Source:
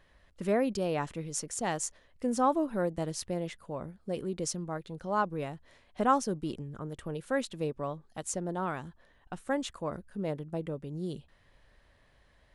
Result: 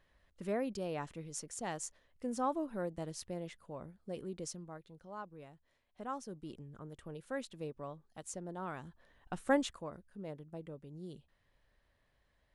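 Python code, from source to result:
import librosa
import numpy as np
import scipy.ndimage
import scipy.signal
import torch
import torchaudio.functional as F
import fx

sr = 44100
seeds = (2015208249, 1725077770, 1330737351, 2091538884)

y = fx.gain(x, sr, db=fx.line((4.34, -8.0), (5.18, -17.0), (6.01, -17.0), (6.65, -9.5), (8.57, -9.5), (9.55, 2.0), (9.92, -11.0)))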